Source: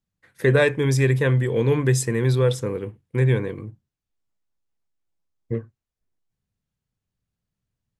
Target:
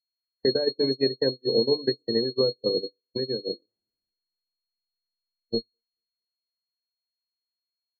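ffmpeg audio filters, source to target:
-filter_complex "[0:a]asettb=1/sr,asplit=3[a][b][c];[a]atrim=end=3.684[d];[b]atrim=start=3.68:end=5.58,asetpts=PTS-STARTPTS,afade=t=in:d=0.004:c=qsin,afade=t=out:st=1.896:d=0.004:c=qsin,aeval=exprs='val(0)+0.5*0.0266*sgn(val(0))':c=same[e];[c]atrim=start=5.576[f];[d][e]acrossfade=d=0.004:c1=hsin:c2=qsin[g];[g][f]acrossfade=d=0.004:c1=qsin:c2=hsin,adynamicequalizer=threshold=0.0224:dfrequency=550:dqfactor=0.73:tfrequency=550:tqfactor=0.73:attack=5:release=100:ratio=0.375:range=4:mode=boostabove:tftype=bell,acompressor=threshold=-23dB:ratio=5,equalizer=f=125:t=o:w=1:g=-4,equalizer=f=250:t=o:w=1:g=8,equalizer=f=1k:t=o:w=1:g=-3,equalizer=f=4k:t=o:w=1:g=-9,acrossover=split=240|710[h][i][j];[h]acompressor=threshold=-40dB:ratio=4[k];[i]acompressor=threshold=-24dB:ratio=4[l];[j]acompressor=threshold=-40dB:ratio=4[m];[k][l][m]amix=inputs=3:normalize=0,bandreject=f=50:t=h:w=6,bandreject=f=100:t=h:w=6,bandreject=f=150:t=h:w=6,bandreject=f=200:t=h:w=6,bandreject=f=250:t=h:w=6,bandreject=f=300:t=h:w=6,aecho=1:1:226|452|678|904|1130:0.178|0.0907|0.0463|0.0236|0.012,aeval=exprs='val(0)+0.0316*sin(2*PI*4300*n/s)':c=same,agate=range=-35dB:threshold=-24dB:ratio=16:detection=peak,afftdn=nr=28:nf=-42,volume=6dB"

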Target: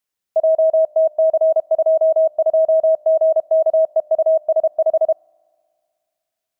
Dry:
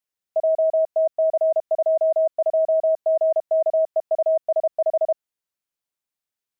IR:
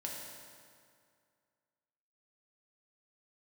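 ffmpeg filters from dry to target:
-filter_complex "[0:a]asplit=2[a][b];[b]equalizer=f=520:w=6.8:g=-7.5[c];[1:a]atrim=start_sample=2205[d];[c][d]afir=irnorm=-1:irlink=0,volume=-20.5dB[e];[a][e]amix=inputs=2:normalize=0,volume=4.5dB"

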